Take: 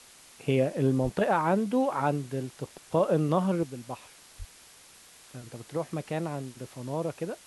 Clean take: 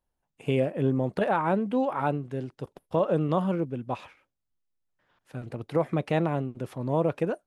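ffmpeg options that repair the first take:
ffmpeg -i in.wav -filter_complex "[0:a]asplit=3[link_01][link_02][link_03];[link_01]afade=type=out:start_time=1.03:duration=0.02[link_04];[link_02]highpass=frequency=140:width=0.5412,highpass=frequency=140:width=1.3066,afade=type=in:start_time=1.03:duration=0.02,afade=type=out:start_time=1.15:duration=0.02[link_05];[link_03]afade=type=in:start_time=1.15:duration=0.02[link_06];[link_04][link_05][link_06]amix=inputs=3:normalize=0,asplit=3[link_07][link_08][link_09];[link_07]afade=type=out:start_time=4.38:duration=0.02[link_10];[link_08]highpass=frequency=140:width=0.5412,highpass=frequency=140:width=1.3066,afade=type=in:start_time=4.38:duration=0.02,afade=type=out:start_time=4.5:duration=0.02[link_11];[link_09]afade=type=in:start_time=4.5:duration=0.02[link_12];[link_10][link_11][link_12]amix=inputs=3:normalize=0,afwtdn=0.0028,asetnsamples=nb_out_samples=441:pad=0,asendcmd='3.63 volume volume 6.5dB',volume=0dB" out.wav

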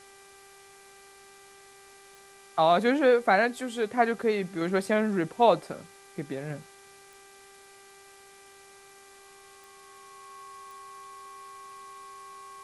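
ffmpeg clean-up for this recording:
ffmpeg -i in.wav -af "adeclick=threshold=4,bandreject=frequency=394:width_type=h:width=4,bandreject=frequency=788:width_type=h:width=4,bandreject=frequency=1182:width_type=h:width=4,bandreject=frequency=1576:width_type=h:width=4,bandreject=frequency=1970:width_type=h:width=4,bandreject=frequency=2364:width_type=h:width=4,bandreject=frequency=1100:width=30,afftdn=noise_reduction=19:noise_floor=-53" out.wav

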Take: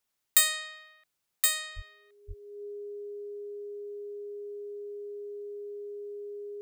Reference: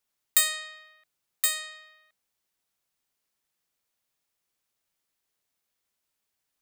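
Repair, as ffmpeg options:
ffmpeg -i in.wav -filter_complex "[0:a]bandreject=frequency=410:width=30,asplit=3[link_01][link_02][link_03];[link_01]afade=type=out:start_time=1.75:duration=0.02[link_04];[link_02]highpass=frequency=140:width=0.5412,highpass=frequency=140:width=1.3066,afade=type=in:start_time=1.75:duration=0.02,afade=type=out:start_time=1.87:duration=0.02[link_05];[link_03]afade=type=in:start_time=1.87:duration=0.02[link_06];[link_04][link_05][link_06]amix=inputs=3:normalize=0,asplit=3[link_07][link_08][link_09];[link_07]afade=type=out:start_time=2.27:duration=0.02[link_10];[link_08]highpass=frequency=140:width=0.5412,highpass=frequency=140:width=1.3066,afade=type=in:start_time=2.27:duration=0.02,afade=type=out:start_time=2.39:duration=0.02[link_11];[link_09]afade=type=in:start_time=2.39:duration=0.02[link_12];[link_10][link_11][link_12]amix=inputs=3:normalize=0" out.wav

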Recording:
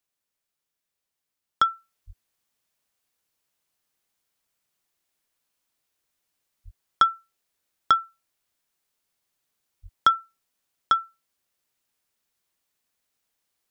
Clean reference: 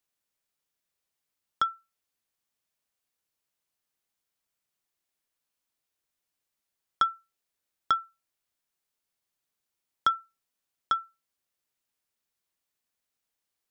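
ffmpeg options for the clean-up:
ffmpeg -i in.wav -filter_complex "[0:a]asplit=3[link_01][link_02][link_03];[link_01]afade=type=out:start_time=2.06:duration=0.02[link_04];[link_02]highpass=frequency=140:width=0.5412,highpass=frequency=140:width=1.3066,afade=type=in:start_time=2.06:duration=0.02,afade=type=out:start_time=2.18:duration=0.02[link_05];[link_03]afade=type=in:start_time=2.18:duration=0.02[link_06];[link_04][link_05][link_06]amix=inputs=3:normalize=0,asplit=3[link_07][link_08][link_09];[link_07]afade=type=out:start_time=6.64:duration=0.02[link_10];[link_08]highpass=frequency=140:width=0.5412,highpass=frequency=140:width=1.3066,afade=type=in:start_time=6.64:duration=0.02,afade=type=out:start_time=6.76:duration=0.02[link_11];[link_09]afade=type=in:start_time=6.76:duration=0.02[link_12];[link_10][link_11][link_12]amix=inputs=3:normalize=0,asplit=3[link_13][link_14][link_15];[link_13]afade=type=out:start_time=9.82:duration=0.02[link_16];[link_14]highpass=frequency=140:width=0.5412,highpass=frequency=140:width=1.3066,afade=type=in:start_time=9.82:duration=0.02,afade=type=out:start_time=9.94:duration=0.02[link_17];[link_15]afade=type=in:start_time=9.94:duration=0.02[link_18];[link_16][link_17][link_18]amix=inputs=3:normalize=0,asetnsamples=nb_out_samples=441:pad=0,asendcmd='1.61 volume volume -6dB',volume=0dB" out.wav

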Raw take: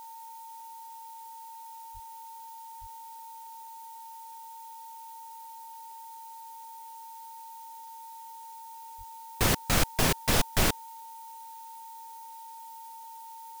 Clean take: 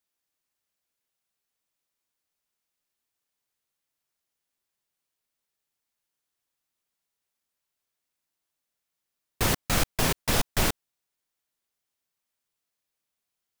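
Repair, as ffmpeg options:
ffmpeg -i in.wav -filter_complex "[0:a]adeclick=threshold=4,bandreject=frequency=910:width=30,asplit=3[link_01][link_02][link_03];[link_01]afade=type=out:start_time=1.93:duration=0.02[link_04];[link_02]highpass=frequency=140:width=0.5412,highpass=frequency=140:width=1.3066,afade=type=in:start_time=1.93:duration=0.02,afade=type=out:start_time=2.05:duration=0.02[link_05];[link_03]afade=type=in:start_time=2.05:duration=0.02[link_06];[link_04][link_05][link_06]amix=inputs=3:normalize=0,asplit=3[link_07][link_08][link_09];[link_07]afade=type=out:start_time=2.8:duration=0.02[link_10];[link_08]highpass=frequency=140:width=0.5412,highpass=frequency=140:width=1.3066,afade=type=in:start_time=2.8:duration=0.02,afade=type=out:start_time=2.92:duration=0.02[link_11];[link_09]afade=type=in:start_time=2.92:duration=0.02[link_12];[link_10][link_11][link_12]amix=inputs=3:normalize=0,asplit=3[link_13][link_14][link_15];[link_13]afade=type=out:start_time=8.97:duration=0.02[link_16];[link_14]highpass=frequency=140:width=0.5412,highpass=frequency=140:width=1.3066,afade=type=in:start_time=8.97:duration=0.02,afade=type=out:start_time=9.09:duration=0.02[link_17];[link_15]afade=type=in:start_time=9.09:duration=0.02[link_18];[link_16][link_17][link_18]amix=inputs=3:normalize=0,afftdn=noise_reduction=30:noise_floor=-45" out.wav

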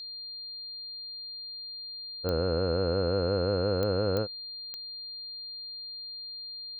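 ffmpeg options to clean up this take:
ffmpeg -i in.wav -af "adeclick=threshold=4,bandreject=frequency=4200:width=30" out.wav

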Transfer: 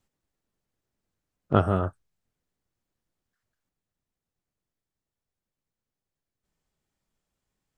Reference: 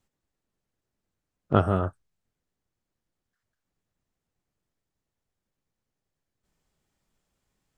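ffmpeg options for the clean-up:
ffmpeg -i in.wav -af "asetnsamples=nb_out_samples=441:pad=0,asendcmd='3.69 volume volume 5dB',volume=0dB" out.wav

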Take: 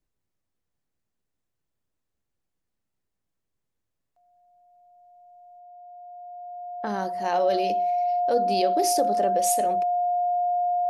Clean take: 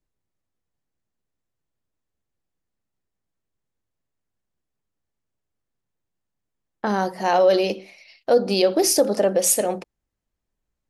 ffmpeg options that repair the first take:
ffmpeg -i in.wav -af "bandreject=frequency=710:width=30,asetnsamples=nb_out_samples=441:pad=0,asendcmd='5.59 volume volume 7.5dB',volume=0dB" out.wav

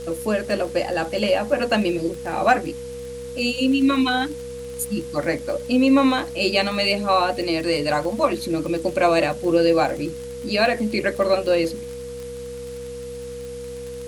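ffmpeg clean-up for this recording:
ffmpeg -i in.wav -af "adeclick=threshold=4,bandreject=frequency=64.8:width_type=h:width=4,bandreject=frequency=129.6:width_type=h:width=4,bandreject=frequency=194.4:width_type=h:width=4,bandreject=frequency=259.2:width_type=h:width=4,bandreject=frequency=480:width=30,afwtdn=0.0056" out.wav

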